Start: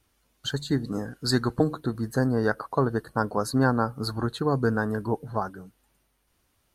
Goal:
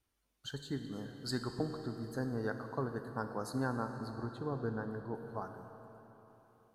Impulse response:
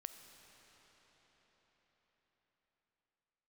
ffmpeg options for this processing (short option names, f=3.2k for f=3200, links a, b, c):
-filter_complex "[0:a]asettb=1/sr,asplit=3[a][b][c];[a]atrim=end=3.884[d];[b]atrim=start=3.88:end=5.15,asetpts=PTS-STARTPTS,afade=t=in:d=0.004:c=qsin,afade=t=out:st=1.266:d=0.004:c=qsin,highshelf=f=2.3k:g=-11.5[e];[c]atrim=start=5.146[f];[d][e]acrossfade=d=0.004:c1=hsin:c2=qsin[g];[g][f]acrossfade=d=0.004:c1=qsin:c2=hsin[h];[1:a]atrim=start_sample=2205,asetrate=66150,aresample=44100[i];[h][i]afir=irnorm=-1:irlink=0,volume=-4.5dB"